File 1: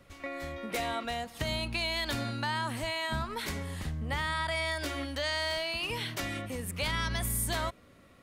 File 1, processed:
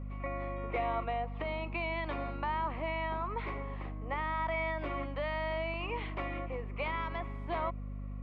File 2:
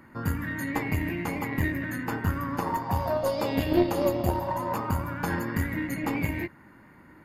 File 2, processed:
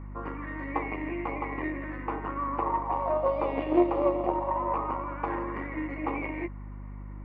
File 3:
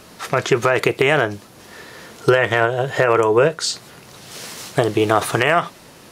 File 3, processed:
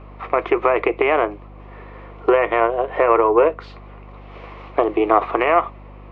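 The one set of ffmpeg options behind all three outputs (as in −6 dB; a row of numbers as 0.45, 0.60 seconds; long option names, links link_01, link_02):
-af "aeval=exprs='0.891*(cos(1*acos(clip(val(0)/0.891,-1,1)))-cos(1*PI/2))+0.158*(cos(2*acos(clip(val(0)/0.891,-1,1)))-cos(2*PI/2))':channel_layout=same,highpass=frequency=300:width=0.5412,highpass=frequency=300:width=1.3066,equalizer=frequency=330:width_type=q:width=4:gain=6,equalizer=frequency=510:width_type=q:width=4:gain=4,equalizer=frequency=730:width_type=q:width=4:gain=5,equalizer=frequency=1100:width_type=q:width=4:gain=10,equalizer=frequency=1600:width_type=q:width=4:gain=-9,equalizer=frequency=2300:width_type=q:width=4:gain=5,lowpass=frequency=2400:width=0.5412,lowpass=frequency=2400:width=1.3066,aeval=exprs='val(0)+0.0178*(sin(2*PI*50*n/s)+sin(2*PI*2*50*n/s)/2+sin(2*PI*3*50*n/s)/3+sin(2*PI*4*50*n/s)/4+sin(2*PI*5*50*n/s)/5)':channel_layout=same,volume=-4dB"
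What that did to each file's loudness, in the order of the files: −3.5, −1.5, −0.5 LU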